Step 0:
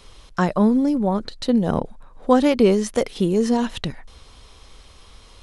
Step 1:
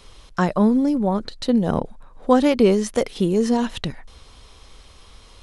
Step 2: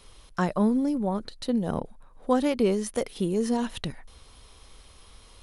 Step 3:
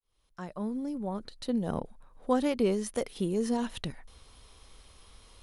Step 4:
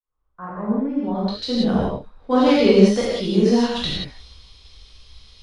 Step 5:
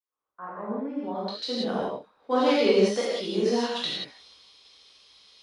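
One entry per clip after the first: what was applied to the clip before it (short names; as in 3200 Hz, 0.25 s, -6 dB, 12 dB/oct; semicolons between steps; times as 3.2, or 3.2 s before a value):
nothing audible
bell 9900 Hz +11.5 dB 0.21 oct; vocal rider within 3 dB 2 s; gain -7.5 dB
opening faded in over 1.63 s; gain -3.5 dB
non-linear reverb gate 0.21 s flat, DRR -7.5 dB; low-pass sweep 1200 Hz -> 4500 Hz, 0.55–1.23; three-band expander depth 40%; gain +3.5 dB
HPF 340 Hz 12 dB/oct; gain -4 dB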